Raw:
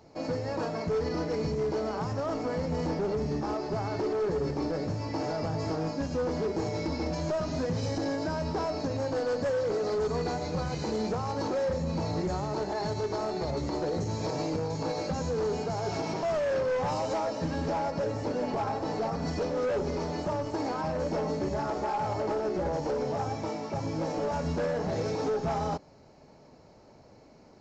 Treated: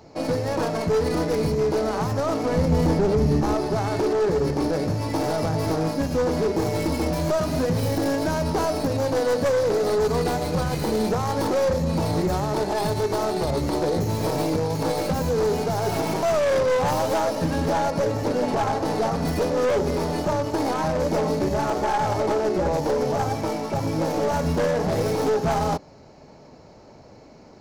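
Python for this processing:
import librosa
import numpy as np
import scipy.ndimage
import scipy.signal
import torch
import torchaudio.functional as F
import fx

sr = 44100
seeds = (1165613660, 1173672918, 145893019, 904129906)

y = fx.tracing_dist(x, sr, depth_ms=0.16)
y = fx.low_shelf(y, sr, hz=180.0, db=8.0, at=(2.51, 3.68))
y = y * 10.0 ** (7.5 / 20.0)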